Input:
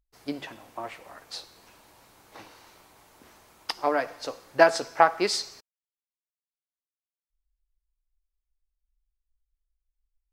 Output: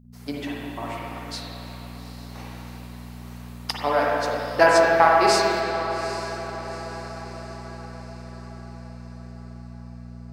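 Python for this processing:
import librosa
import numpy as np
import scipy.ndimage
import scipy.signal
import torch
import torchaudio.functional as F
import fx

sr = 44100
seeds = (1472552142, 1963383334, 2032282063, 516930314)

p1 = fx.high_shelf(x, sr, hz=5800.0, db=7.0)
p2 = p1 + fx.echo_diffused(p1, sr, ms=818, feedback_pct=52, wet_db=-12, dry=0)
p3 = fx.dmg_buzz(p2, sr, base_hz=60.0, harmonics=4, level_db=-52.0, tilt_db=-2, odd_only=False)
y = fx.rev_spring(p3, sr, rt60_s=2.4, pass_ms=(42, 50, 55), chirp_ms=45, drr_db=-4.0)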